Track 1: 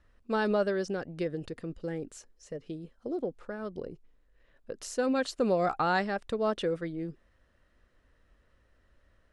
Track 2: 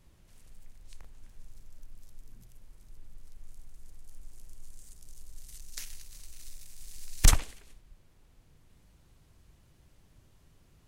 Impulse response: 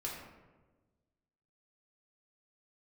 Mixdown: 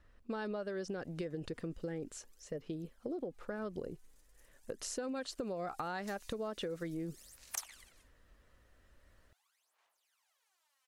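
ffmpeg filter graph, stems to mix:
-filter_complex "[0:a]acompressor=threshold=-33dB:ratio=2.5,volume=0dB,asplit=2[a][b];[1:a]highpass=f=760:w=0.5412,highpass=f=760:w=1.3066,aphaser=in_gain=1:out_gain=1:delay=4.1:decay=0.77:speed=0.42:type=sinusoidal,adelay=300,volume=-10.5dB[c];[b]apad=whole_len=492887[d];[c][d]sidechaincompress=threshold=-40dB:ratio=8:attack=49:release=142[e];[a][e]amix=inputs=2:normalize=0,acompressor=threshold=-36dB:ratio=6"

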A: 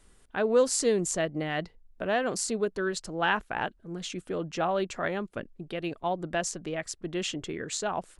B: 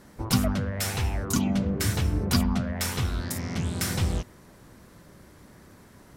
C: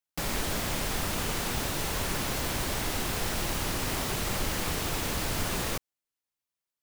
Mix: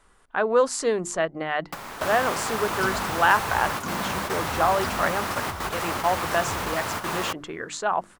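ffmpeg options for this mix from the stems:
-filter_complex "[0:a]bandreject=f=50:t=h:w=6,bandreject=f=100:t=h:w=6,bandreject=f=150:t=h:w=6,bandreject=f=200:t=h:w=6,bandreject=f=250:t=h:w=6,bandreject=f=300:t=h:w=6,bandreject=f=350:t=h:w=6,volume=-2.5dB,asplit=2[a][b];[1:a]adelay=2500,volume=-13dB[c];[2:a]highpass=81,adelay=1550,volume=-3dB[d];[b]apad=whole_len=369411[e];[d][e]sidechaingate=range=-9dB:threshold=-46dB:ratio=16:detection=peak[f];[a][c][f]amix=inputs=3:normalize=0,equalizer=f=1.1k:t=o:w=1.8:g=13"

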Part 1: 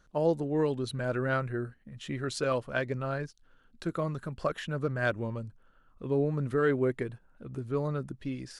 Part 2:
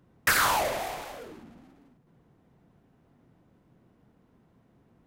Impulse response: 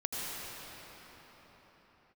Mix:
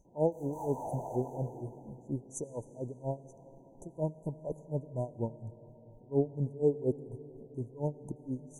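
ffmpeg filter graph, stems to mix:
-filter_complex "[0:a]aeval=exprs='val(0)*pow(10,-28*(0.5-0.5*cos(2*PI*4.2*n/s))/20)':c=same,volume=1.5dB,asplit=3[a][b][c];[b]volume=-20dB[d];[1:a]alimiter=limit=-22.5dB:level=0:latency=1:release=30,asplit=2[e][f];[f]highpass=f=720:p=1,volume=21dB,asoftclip=type=tanh:threshold=-22.5dB[g];[e][g]amix=inputs=2:normalize=0,lowpass=f=1.2k:p=1,volume=-6dB,adelay=50,volume=-4.5dB,asplit=2[h][i];[i]volume=-8dB[j];[c]apad=whole_len=225676[k];[h][k]sidechaincompress=threshold=-47dB:ratio=10:attack=46:release=211[l];[2:a]atrim=start_sample=2205[m];[d][m]afir=irnorm=-1:irlink=0[n];[j]aecho=0:1:209|418|627|836|1045|1254:1|0.42|0.176|0.0741|0.0311|0.0131[o];[a][l][n][o]amix=inputs=4:normalize=0,afftfilt=real='re*(1-between(b*sr/4096,1000,5900))':imag='im*(1-between(b*sr/4096,1000,5900))':win_size=4096:overlap=0.75"

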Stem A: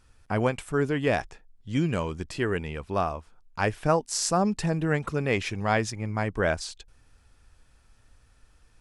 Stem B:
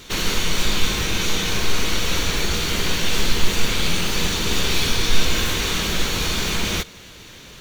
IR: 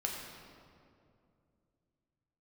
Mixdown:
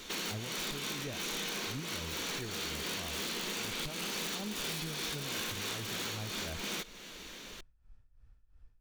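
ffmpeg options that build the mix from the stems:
-filter_complex "[0:a]aemphasis=mode=reproduction:type=bsi,tremolo=f=2.9:d=0.81,volume=-12.5dB,asplit=2[a][b];[1:a]highpass=f=180:w=0.5412,highpass=f=180:w=1.3066,aeval=exprs='(mod(5.62*val(0)+1,2)-1)/5.62':c=same,volume=-5dB[c];[b]apad=whole_len=335459[d];[c][d]sidechaincompress=threshold=-37dB:ratio=8:attack=5.9:release=228[e];[a][e]amix=inputs=2:normalize=0,acompressor=threshold=-41dB:ratio=2"

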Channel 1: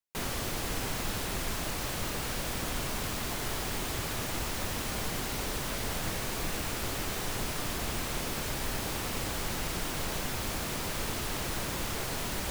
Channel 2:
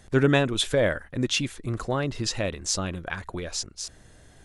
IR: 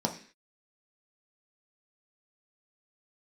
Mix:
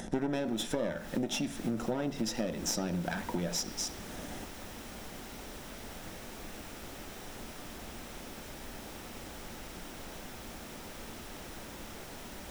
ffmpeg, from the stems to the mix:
-filter_complex "[0:a]equalizer=f=12k:w=0.31:g=-2.5,volume=-11.5dB,asplit=2[a][b];[b]volume=-19.5dB[c];[1:a]acompressor=mode=upward:threshold=-35dB:ratio=2.5,aeval=exprs='clip(val(0),-1,0.0251)':c=same,volume=-3dB,asplit=3[d][e][f];[e]volume=-7.5dB[g];[f]apad=whole_len=551310[h];[a][h]sidechaincompress=threshold=-30dB:ratio=8:attack=16:release=304[i];[2:a]atrim=start_sample=2205[j];[c][g]amix=inputs=2:normalize=0[k];[k][j]afir=irnorm=-1:irlink=0[l];[i][d][l]amix=inputs=3:normalize=0,acompressor=threshold=-29dB:ratio=10"

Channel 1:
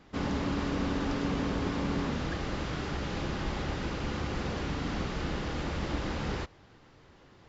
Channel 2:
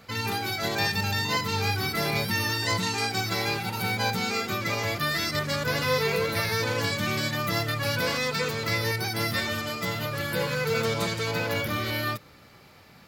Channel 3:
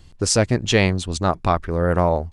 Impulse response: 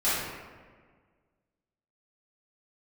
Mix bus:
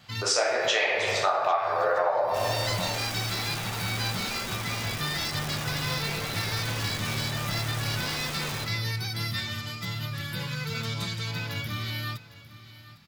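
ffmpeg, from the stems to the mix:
-filter_complex "[0:a]highpass=f=73:p=1,aeval=exprs='(mod(37.6*val(0)+1,2)-1)/37.6':c=same,adelay=2200,volume=-1dB,asplit=3[a][b][c];[b]volume=-18dB[d];[c]volume=-22dB[e];[1:a]equalizer=f=125:t=o:w=1:g=9,equalizer=f=500:t=o:w=1:g=-10,equalizer=f=4k:t=o:w=1:g=8,volume=-7dB,asplit=2[f][g];[g]volume=-17dB[h];[2:a]highpass=f=560:w=0.5412,highpass=f=560:w=1.3066,lowpass=5k,volume=-3.5dB,asplit=4[i][j][k][l];[j]volume=-3.5dB[m];[k]volume=-12dB[n];[l]apad=whole_len=576639[o];[f][o]sidechaincompress=threshold=-41dB:ratio=8:attack=16:release=249[p];[3:a]atrim=start_sample=2205[q];[d][m]amix=inputs=2:normalize=0[r];[r][q]afir=irnorm=-1:irlink=0[s];[e][h][n]amix=inputs=3:normalize=0,aecho=0:1:804:1[t];[a][p][i][s][t]amix=inputs=5:normalize=0,bandreject=f=4.3k:w=14,acompressor=threshold=-21dB:ratio=10"

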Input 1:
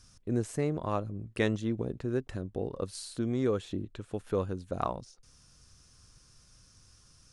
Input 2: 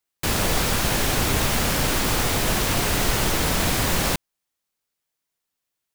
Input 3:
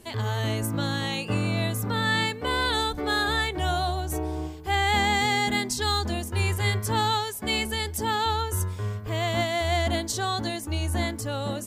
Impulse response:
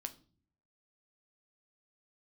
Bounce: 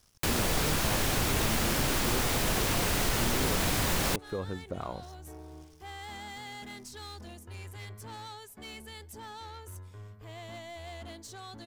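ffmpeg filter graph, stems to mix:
-filter_complex "[0:a]alimiter=limit=-23dB:level=0:latency=1,aeval=exprs='sgn(val(0))*max(abs(val(0))-0.00133,0)':c=same,volume=3dB[a];[1:a]acontrast=69,volume=-5.5dB[b];[2:a]aeval=exprs='0.224*(cos(1*acos(clip(val(0)/0.224,-1,1)))-cos(1*PI/2))+0.00794*(cos(8*acos(clip(val(0)/0.224,-1,1)))-cos(8*PI/2))':c=same,asoftclip=type=tanh:threshold=-24dB,adelay=1150,volume=-15dB[c];[a][b][c]amix=inputs=3:normalize=0,acompressor=threshold=-38dB:ratio=1.5"

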